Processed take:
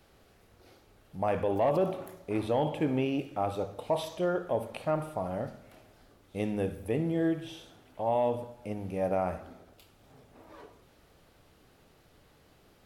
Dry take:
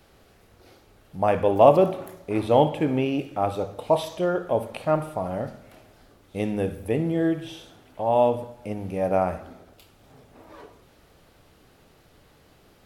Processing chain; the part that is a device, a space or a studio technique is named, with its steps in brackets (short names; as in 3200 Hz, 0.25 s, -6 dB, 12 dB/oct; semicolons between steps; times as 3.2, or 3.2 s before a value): soft clipper into limiter (soft clip -6 dBFS, distortion -22 dB; limiter -14 dBFS, peak gain reduction 7 dB); gain -5 dB